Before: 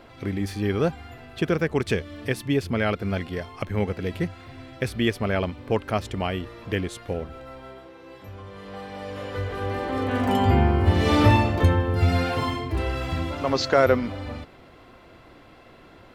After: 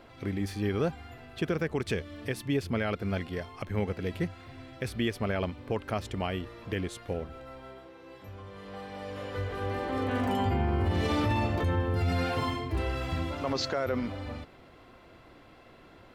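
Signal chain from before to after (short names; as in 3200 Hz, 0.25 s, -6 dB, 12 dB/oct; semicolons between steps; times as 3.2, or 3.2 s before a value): limiter -15 dBFS, peak gain reduction 9.5 dB; gain -4.5 dB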